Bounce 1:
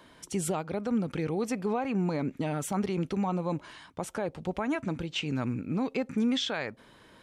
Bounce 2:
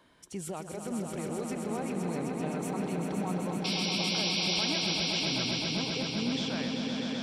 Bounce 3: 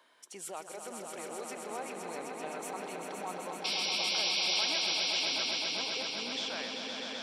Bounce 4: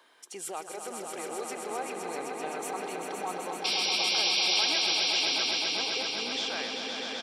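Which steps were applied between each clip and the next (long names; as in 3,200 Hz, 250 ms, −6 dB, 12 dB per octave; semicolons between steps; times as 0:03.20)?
sound drawn into the spectrogram noise, 0:03.64–0:04.65, 2,100–5,800 Hz −26 dBFS; echo that builds up and dies away 129 ms, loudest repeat 5, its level −6 dB; level −7.5 dB
high-pass filter 560 Hz 12 dB per octave
comb filter 2.5 ms, depth 31%; level +4 dB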